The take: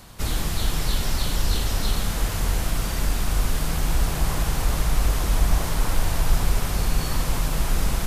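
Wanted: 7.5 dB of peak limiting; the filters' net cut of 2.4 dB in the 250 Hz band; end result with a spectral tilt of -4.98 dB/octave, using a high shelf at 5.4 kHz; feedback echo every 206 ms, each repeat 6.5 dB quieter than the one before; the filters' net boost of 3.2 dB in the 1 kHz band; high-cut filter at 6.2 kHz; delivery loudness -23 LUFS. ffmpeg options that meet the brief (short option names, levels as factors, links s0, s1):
-af "lowpass=6200,equalizer=f=250:t=o:g=-4,equalizer=f=1000:t=o:g=4.5,highshelf=f=5400:g=-8,alimiter=limit=0.168:level=0:latency=1,aecho=1:1:206|412|618|824|1030|1236:0.473|0.222|0.105|0.0491|0.0231|0.0109,volume=1.68"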